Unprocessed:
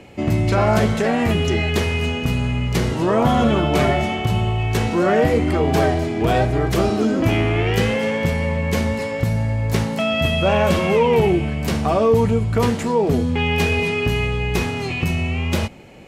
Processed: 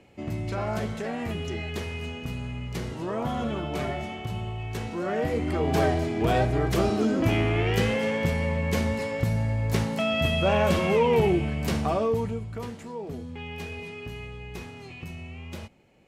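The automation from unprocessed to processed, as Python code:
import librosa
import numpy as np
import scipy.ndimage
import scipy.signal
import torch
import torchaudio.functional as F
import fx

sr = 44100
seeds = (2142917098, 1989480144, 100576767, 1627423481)

y = fx.gain(x, sr, db=fx.line((5.0, -13.0), (5.84, -5.5), (11.79, -5.5), (12.66, -18.0)))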